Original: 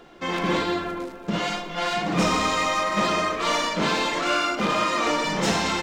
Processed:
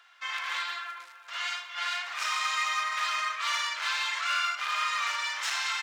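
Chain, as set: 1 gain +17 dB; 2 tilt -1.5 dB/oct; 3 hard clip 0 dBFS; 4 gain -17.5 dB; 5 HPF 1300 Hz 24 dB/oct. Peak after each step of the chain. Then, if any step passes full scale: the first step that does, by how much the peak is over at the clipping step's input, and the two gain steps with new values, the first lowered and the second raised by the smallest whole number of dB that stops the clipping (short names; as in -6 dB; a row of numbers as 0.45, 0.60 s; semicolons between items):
+7.5, +8.5, 0.0, -17.5, -17.0 dBFS; step 1, 8.5 dB; step 1 +8 dB, step 4 -8.5 dB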